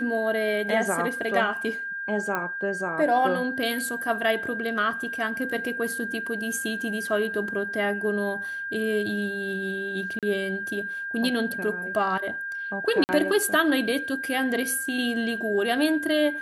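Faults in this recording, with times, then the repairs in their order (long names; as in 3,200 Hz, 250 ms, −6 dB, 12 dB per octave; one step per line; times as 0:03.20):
whistle 1,600 Hz −30 dBFS
0:02.35: click −14 dBFS
0:10.19–0:10.23: drop-out 37 ms
0:13.04–0:13.09: drop-out 49 ms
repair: click removal
notch filter 1,600 Hz, Q 30
repair the gap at 0:10.19, 37 ms
repair the gap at 0:13.04, 49 ms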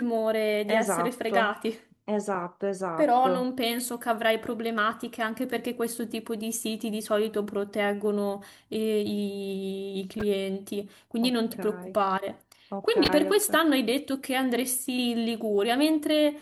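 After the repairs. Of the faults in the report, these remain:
none of them is left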